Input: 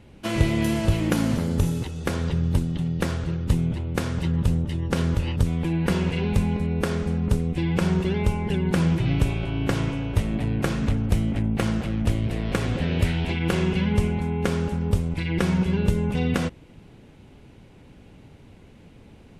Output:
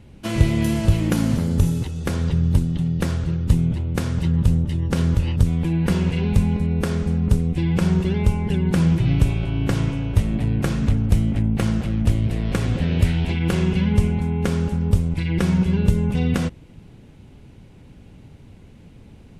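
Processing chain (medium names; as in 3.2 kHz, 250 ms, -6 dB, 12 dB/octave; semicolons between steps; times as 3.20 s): tone controls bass +6 dB, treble +3 dB; trim -1 dB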